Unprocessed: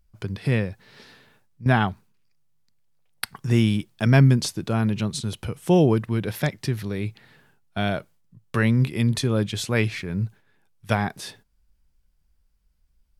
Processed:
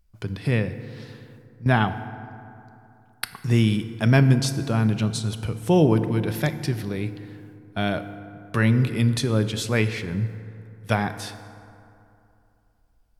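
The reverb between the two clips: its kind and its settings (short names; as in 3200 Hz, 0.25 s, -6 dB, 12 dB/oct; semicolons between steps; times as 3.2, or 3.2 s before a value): FDN reverb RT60 2.8 s, high-frequency decay 0.45×, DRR 10 dB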